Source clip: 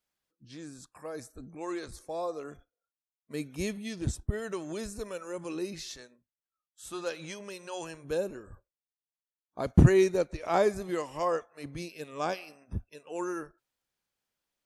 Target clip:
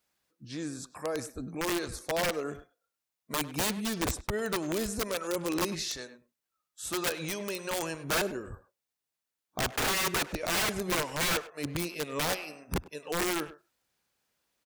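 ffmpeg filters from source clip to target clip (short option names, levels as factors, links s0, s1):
-filter_complex "[0:a]highpass=f=49:p=1,bandreject=f=3200:w=27,asplit=2[s0][s1];[s1]acompressor=threshold=0.0141:ratio=8,volume=1.41[s2];[s0][s2]amix=inputs=2:normalize=0,aeval=exprs='(mod(15*val(0)+1,2)-1)/15':c=same,asplit=2[s3][s4];[s4]adelay=100,highpass=300,lowpass=3400,asoftclip=type=hard:threshold=0.0237,volume=0.251[s5];[s3][s5]amix=inputs=2:normalize=0"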